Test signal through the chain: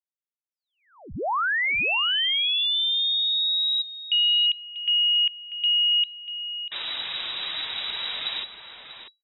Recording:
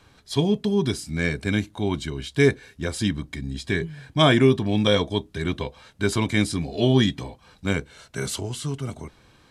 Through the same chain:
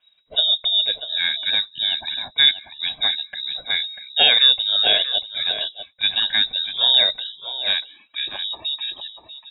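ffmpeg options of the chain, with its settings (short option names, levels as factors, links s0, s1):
-filter_complex "[0:a]afftdn=nr=16:nf=-44,lowpass=f=3300:t=q:w=0.5098,lowpass=f=3300:t=q:w=0.6013,lowpass=f=3300:t=q:w=0.9,lowpass=f=3300:t=q:w=2.563,afreqshift=-3900,asplit=2[s0][s1];[s1]adelay=641.4,volume=0.447,highshelf=f=4000:g=-14.4[s2];[s0][s2]amix=inputs=2:normalize=0,volume=1.26"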